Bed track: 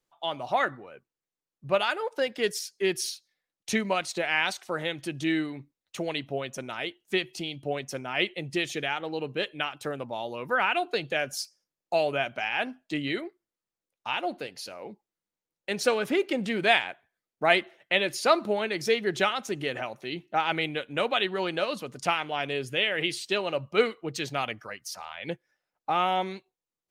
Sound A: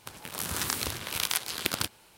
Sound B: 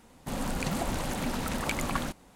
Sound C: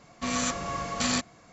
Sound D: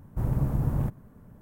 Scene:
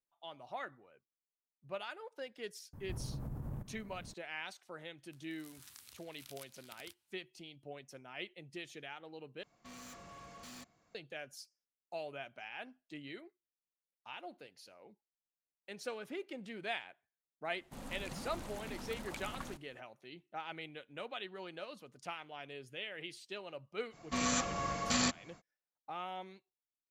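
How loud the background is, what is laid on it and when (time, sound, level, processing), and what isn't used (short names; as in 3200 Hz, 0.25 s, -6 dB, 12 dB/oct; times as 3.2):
bed track -17.5 dB
2.73 add D -2 dB + compressor, threshold -37 dBFS
5.06 add A -18 dB + passive tone stack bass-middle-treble 5-5-5
9.43 replace with C -18 dB + hard clip -31.5 dBFS
17.45 add B -14.5 dB
23.9 add C -4.5 dB, fades 0.05 s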